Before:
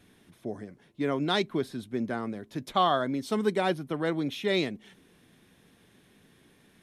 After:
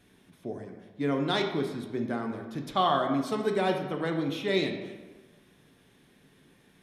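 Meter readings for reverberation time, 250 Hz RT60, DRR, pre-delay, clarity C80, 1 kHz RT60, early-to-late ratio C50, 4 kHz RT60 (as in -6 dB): 1.3 s, 1.2 s, 3.0 dB, 6 ms, 7.5 dB, 1.3 s, 6.0 dB, 0.80 s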